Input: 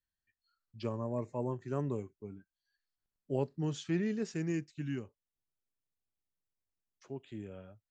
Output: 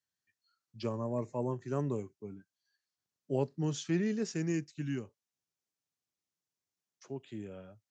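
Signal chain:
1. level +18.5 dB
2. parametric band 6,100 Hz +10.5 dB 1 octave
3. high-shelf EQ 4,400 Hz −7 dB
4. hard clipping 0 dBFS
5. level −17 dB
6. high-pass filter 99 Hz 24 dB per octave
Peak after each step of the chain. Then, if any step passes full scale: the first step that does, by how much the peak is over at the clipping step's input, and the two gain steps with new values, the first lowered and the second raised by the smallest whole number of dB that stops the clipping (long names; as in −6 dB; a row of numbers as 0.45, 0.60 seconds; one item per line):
−2.5, −2.5, −2.5, −2.5, −19.5, −19.0 dBFS
no step passes full scale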